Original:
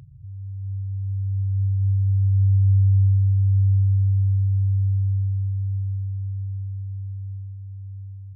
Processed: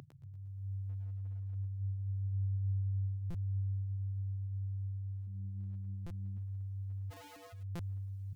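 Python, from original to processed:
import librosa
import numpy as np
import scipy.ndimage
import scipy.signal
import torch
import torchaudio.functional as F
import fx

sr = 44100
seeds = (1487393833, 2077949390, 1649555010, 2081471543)

y = fx.recorder_agc(x, sr, target_db=-19.0, rise_db_per_s=6.6, max_gain_db=30)
y = fx.dereverb_blind(y, sr, rt60_s=0.93)
y = scipy.signal.sosfilt(scipy.signal.butter(2, 250.0, 'highpass', fs=sr, output='sos'), y)
y = fx.echo_feedback(y, sr, ms=118, feedback_pct=57, wet_db=-12.0)
y = fx.overflow_wrap(y, sr, gain_db=51.0, at=(7.1, 7.52), fade=0.02)
y = y + 10.0 ** (-5.5 / 20.0) * np.pad(y, (int(104 * sr / 1000.0), 0))[:len(y)]
y = fx.dereverb_blind(y, sr, rt60_s=0.58)
y = fx.buffer_glitch(y, sr, at_s=(3.3, 6.06, 7.75), block=256, repeats=7)
y = fx.doppler_dist(y, sr, depth_ms=0.83, at=(5.27, 6.38))
y = y * librosa.db_to_amplitude(2.5)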